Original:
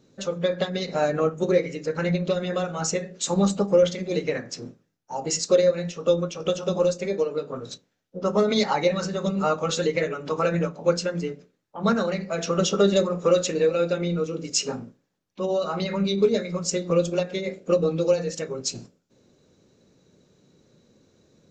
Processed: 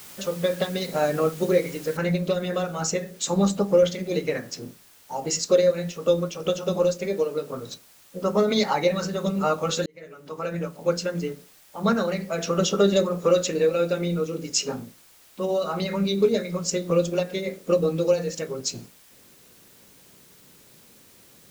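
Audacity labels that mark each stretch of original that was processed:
1.970000	1.970000	noise floor step -44 dB -54 dB
9.860000	11.180000	fade in linear

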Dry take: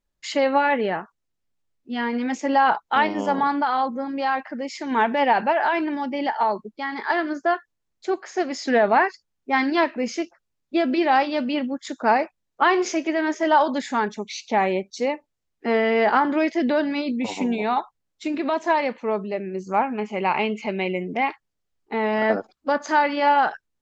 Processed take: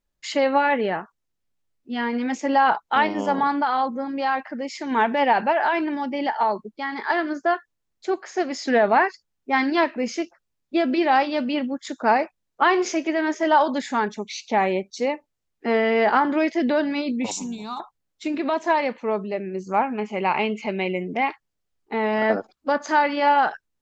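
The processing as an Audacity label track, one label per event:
17.310000	17.800000	EQ curve 150 Hz 0 dB, 300 Hz -11 dB, 620 Hz -19 dB, 1200 Hz -4 dB, 1900 Hz -22 dB, 6000 Hz +13 dB

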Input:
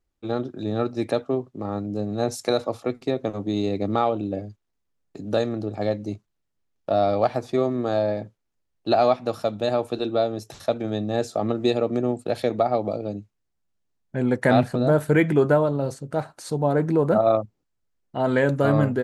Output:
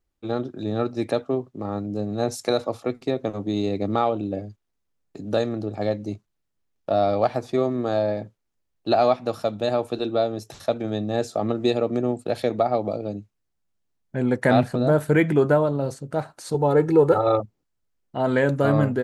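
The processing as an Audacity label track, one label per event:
16.540000	17.400000	comb 2.3 ms, depth 99%

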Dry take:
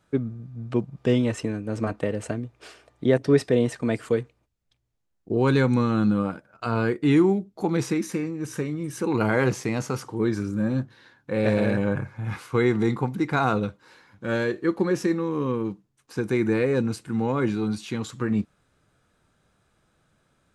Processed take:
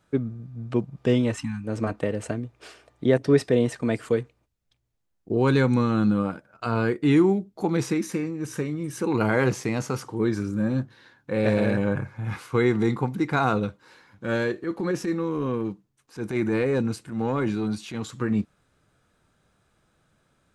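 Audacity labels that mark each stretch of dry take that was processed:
1.360000	1.640000	spectral delete 300–740 Hz
14.470000	18.110000	transient shaper attack -10 dB, sustain -1 dB

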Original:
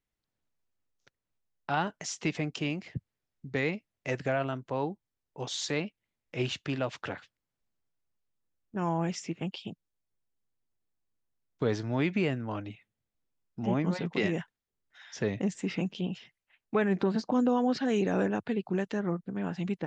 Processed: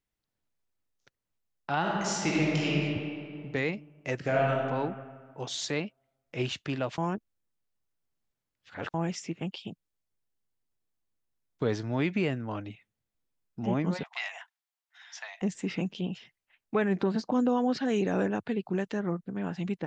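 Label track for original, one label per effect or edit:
1.790000	2.720000	reverb throw, RT60 2.4 s, DRR -5 dB
4.150000	4.650000	reverb throw, RT60 1.8 s, DRR -2 dB
6.980000	8.940000	reverse
14.030000	15.420000	Chebyshev high-pass 680 Hz, order 6

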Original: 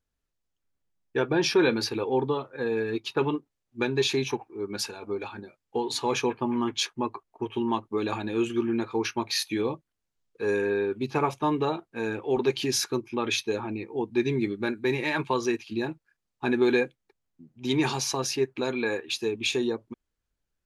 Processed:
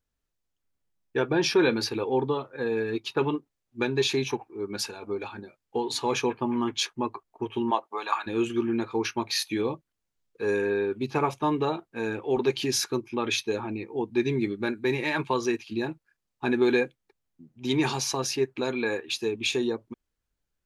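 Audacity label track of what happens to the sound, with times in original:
7.700000	8.260000	resonant high-pass 520 Hz -> 1300 Hz, resonance Q 3.1

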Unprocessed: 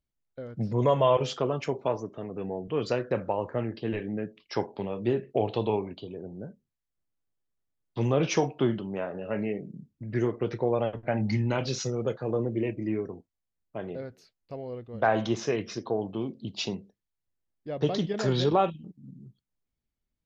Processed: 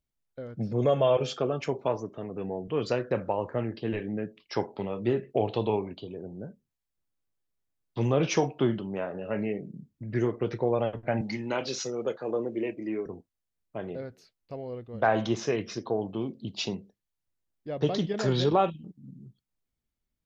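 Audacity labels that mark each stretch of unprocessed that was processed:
0.560000	1.610000	notch comb 970 Hz
4.640000	5.280000	small resonant body resonances 1300/2000 Hz, height 9 dB
11.210000	13.060000	HPF 270 Hz

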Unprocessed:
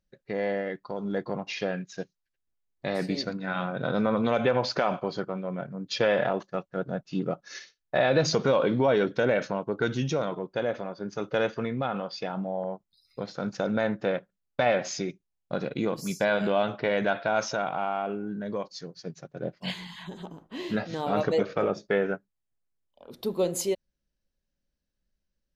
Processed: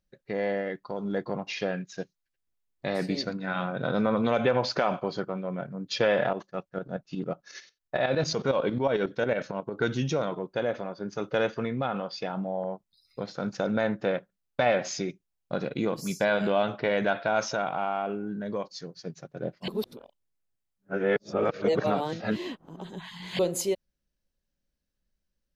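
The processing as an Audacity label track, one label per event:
6.330000	9.770000	tremolo saw up 11 Hz, depth 70%
19.680000	23.390000	reverse

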